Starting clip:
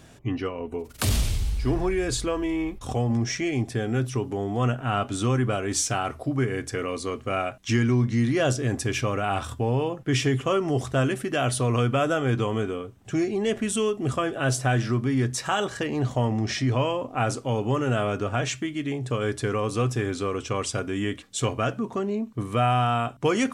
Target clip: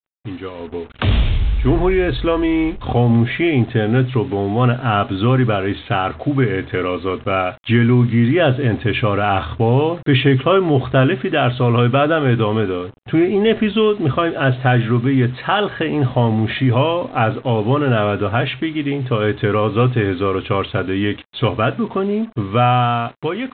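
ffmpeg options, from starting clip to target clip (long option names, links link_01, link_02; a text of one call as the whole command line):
ffmpeg -i in.wav -af "dynaudnorm=framelen=140:gausssize=11:maxgain=16dB,aresample=8000,acrusher=bits=5:mix=0:aa=0.5,aresample=44100,volume=-1.5dB" out.wav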